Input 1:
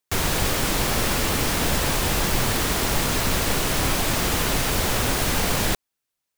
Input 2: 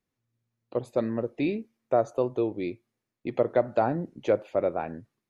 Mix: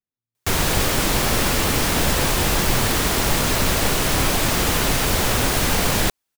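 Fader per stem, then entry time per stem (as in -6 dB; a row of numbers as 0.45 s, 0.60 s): +3.0 dB, -14.0 dB; 0.35 s, 0.00 s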